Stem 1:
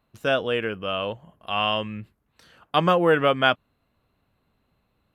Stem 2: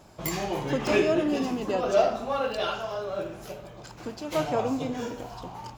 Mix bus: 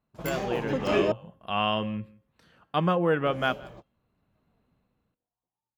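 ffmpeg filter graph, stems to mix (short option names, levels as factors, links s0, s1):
-filter_complex "[0:a]equalizer=f=180:w=1.1:g=5,dynaudnorm=f=230:g=7:m=4.47,bandreject=f=268.7:t=h:w=4,bandreject=f=537.4:t=h:w=4,bandreject=f=806.1:t=h:w=4,bandreject=f=1074.8:t=h:w=4,bandreject=f=1343.5:t=h:w=4,bandreject=f=1612.2:t=h:w=4,bandreject=f=1880.9:t=h:w=4,bandreject=f=2149.6:t=h:w=4,bandreject=f=2418.3:t=h:w=4,bandreject=f=2687:t=h:w=4,bandreject=f=2955.7:t=h:w=4,bandreject=f=3224.4:t=h:w=4,bandreject=f=3493.1:t=h:w=4,bandreject=f=3761.8:t=h:w=4,bandreject=f=4030.5:t=h:w=4,bandreject=f=4299.2:t=h:w=4,bandreject=f=4567.9:t=h:w=4,bandreject=f=4836.6:t=h:w=4,bandreject=f=5105.3:t=h:w=4,bandreject=f=5374:t=h:w=4,bandreject=f=5642.7:t=h:w=4,bandreject=f=5911.4:t=h:w=4,bandreject=f=6180.1:t=h:w=4,bandreject=f=6448.8:t=h:w=4,bandreject=f=6717.5:t=h:w=4,bandreject=f=6986.2:t=h:w=4,bandreject=f=7254.9:t=h:w=4,bandreject=f=7523.6:t=h:w=4,bandreject=f=7792.3:t=h:w=4,bandreject=f=8061:t=h:w=4,bandreject=f=8329.7:t=h:w=4,bandreject=f=8598.4:t=h:w=4,bandreject=f=8867.1:t=h:w=4,bandreject=f=9135.8:t=h:w=4,bandreject=f=9404.5:t=h:w=4,volume=0.316,asplit=3[s0][s1][s2];[s1]volume=0.0708[s3];[1:a]volume=0.841,asplit=3[s4][s5][s6];[s4]atrim=end=1.12,asetpts=PTS-STARTPTS,afade=t=out:st=1.116:d=0.004:c=hsin[s7];[s5]atrim=start=1.12:end=3.26,asetpts=PTS-STARTPTS,volume=0[s8];[s6]atrim=start=3.26,asetpts=PTS-STARTPTS,afade=t=in:d=0.004:c=hsin[s9];[s7][s8][s9]concat=n=3:v=0:a=1[s10];[s2]apad=whole_len=254657[s11];[s10][s11]sidechaingate=range=0.00224:threshold=0.00112:ratio=16:detection=peak[s12];[s3]aecho=0:1:169:1[s13];[s0][s12][s13]amix=inputs=3:normalize=0,highshelf=f=4100:g=-11.5,crystalizer=i=0.5:c=0"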